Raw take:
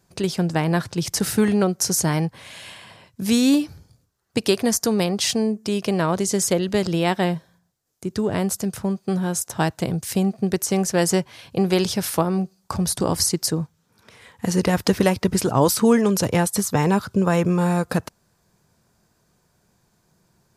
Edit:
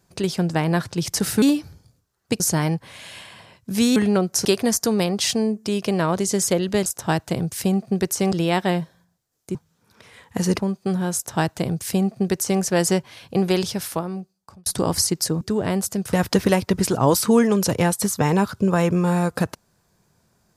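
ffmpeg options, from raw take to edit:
-filter_complex "[0:a]asplit=12[a][b][c][d][e][f][g][h][i][j][k][l];[a]atrim=end=1.422[m];[b]atrim=start=3.468:end=4.452[n];[c]atrim=start=1.908:end=3.472[o];[d]atrim=start=1.418:end=1.912[p];[e]atrim=start=4.448:end=6.862[q];[f]atrim=start=9.368:end=10.832[r];[g]atrim=start=6.858:end=8.092[s];[h]atrim=start=13.628:end=14.672[t];[i]atrim=start=8.808:end=12.88,asetpts=PTS-STARTPTS,afade=t=out:st=2.802:d=1.27[u];[j]atrim=start=12.88:end=13.632,asetpts=PTS-STARTPTS,afade=t=in:d=0.004:c=hsin[v];[k]atrim=start=8.088:end=8.812[w];[l]atrim=start=14.668[x];[m][n]acrossfade=d=0.004:c1=hsin:c2=hsin[y];[y][o]acrossfade=d=0.004:c1=hsin:c2=hsin[z];[z][p]acrossfade=d=0.004:c1=hsin:c2=hsin[aa];[aa][q]acrossfade=d=0.004:c1=hsin:c2=hsin[ab];[ab][r]acrossfade=d=0.004:c1=hsin:c2=hsin[ac];[ac][s]acrossfade=d=0.004:c1=hsin:c2=hsin[ad];[ad][t]acrossfade=d=0.004:c1=hsin:c2=hsin[ae];[u][v]concat=n=2:v=0:a=1[af];[ae][af]acrossfade=d=0.004:c1=hsin:c2=hsin[ag];[ag][w]acrossfade=d=0.004:c1=hsin:c2=hsin[ah];[ah][x]acrossfade=d=0.004:c1=hsin:c2=hsin"

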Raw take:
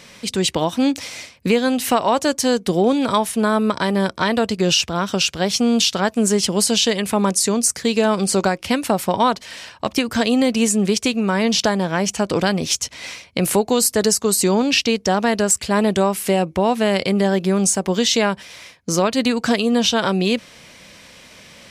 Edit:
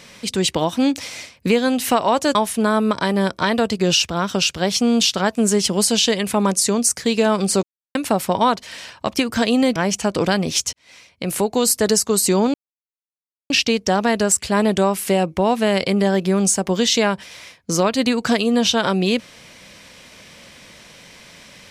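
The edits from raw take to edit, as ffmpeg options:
-filter_complex "[0:a]asplit=7[a][b][c][d][e][f][g];[a]atrim=end=2.352[h];[b]atrim=start=3.138:end=8.42,asetpts=PTS-STARTPTS,afade=t=out:st=5.278:d=0.004:c=hsin[i];[c]atrim=start=8.42:end=8.74,asetpts=PTS-STARTPTS,volume=0[j];[d]atrim=start=8.74:end=10.552,asetpts=PTS-STARTPTS,afade=t=in:d=0.004:c=hsin[k];[e]atrim=start=11.908:end=12.88,asetpts=PTS-STARTPTS,afade=t=out:st=0.968:d=0.004:c=hsin[l];[f]atrim=start=12.88:end=14.69,asetpts=PTS-STARTPTS,afade=t=in:d=0.96,afade=t=out:st=1.806:d=0.004:c=hsin,apad=pad_dur=0.96[m];[g]atrim=start=14.69,asetpts=PTS-STARTPTS,afade=t=in:d=0.004:c=hsin[n];[i][j][k]concat=n=3:v=0:a=1[o];[h][o]acrossfade=d=0.004:c1=hsin:c2=hsin[p];[l][m][n]concat=n=3:v=0:a=1[q];[p][q]acrossfade=d=0.004:c1=hsin:c2=hsin"

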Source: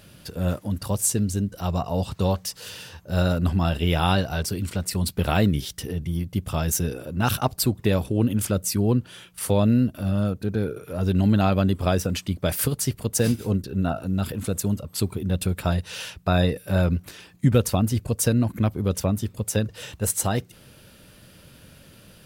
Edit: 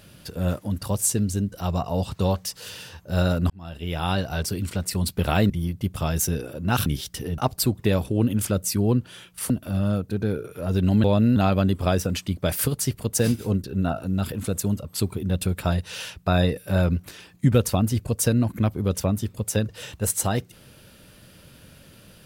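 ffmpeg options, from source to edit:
-filter_complex "[0:a]asplit=8[a][b][c][d][e][f][g][h];[a]atrim=end=3.5,asetpts=PTS-STARTPTS,afade=t=out:st=3.496:d=0.004:c=hsin[i];[b]atrim=start=3.5:end=5.502,asetpts=PTS-STARTPTS,afade=t=in:d=0.93[j];[c]atrim=start=6.018:end=7.382[k];[d]atrim=start=5.498:end=6.022[l];[e]atrim=start=7.378:end=9.502[m];[f]atrim=start=9.818:end=11.362[n];[g]atrim=start=9.498:end=9.822[o];[h]atrim=start=11.358[p];[i][j]concat=n=2:v=0:a=1[q];[q][k]acrossfade=d=0.004:c1=hsin:c2=hsin[r];[r][l]acrossfade=d=0.004:c1=hsin:c2=hsin[s];[s][m]acrossfade=d=0.004:c1=hsin:c2=hsin[t];[t][n]acrossfade=d=0.004:c1=hsin:c2=hsin[u];[u][o]acrossfade=d=0.004:c1=hsin:c2=hsin[v];[v][p]acrossfade=d=0.004:c1=hsin:c2=hsin"

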